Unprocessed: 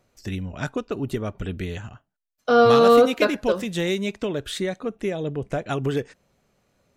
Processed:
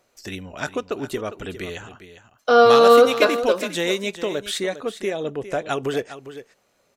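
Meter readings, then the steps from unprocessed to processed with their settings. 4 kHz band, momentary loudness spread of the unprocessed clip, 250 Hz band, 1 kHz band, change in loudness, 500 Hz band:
+4.5 dB, 17 LU, −2.5 dB, +3.5 dB, +3.0 dB, +2.5 dB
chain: bass and treble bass −13 dB, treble +2 dB
single-tap delay 405 ms −13 dB
level +3.5 dB

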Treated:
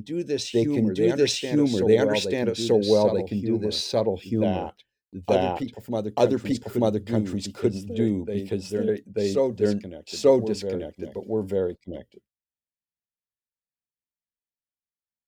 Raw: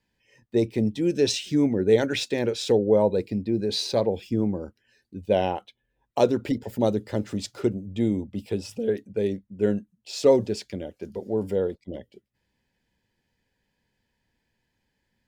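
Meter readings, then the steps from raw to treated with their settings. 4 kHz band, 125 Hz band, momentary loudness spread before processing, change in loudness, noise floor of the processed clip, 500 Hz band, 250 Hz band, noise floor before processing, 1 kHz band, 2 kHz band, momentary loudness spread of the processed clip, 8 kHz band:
+1.0 dB, +1.0 dB, 14 LU, +1.0 dB, below −85 dBFS, +1.0 dB, +1.0 dB, −77 dBFS, +1.0 dB, +1.0 dB, 11 LU, +1.0 dB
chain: downward expander −49 dBFS
backwards echo 889 ms −5 dB

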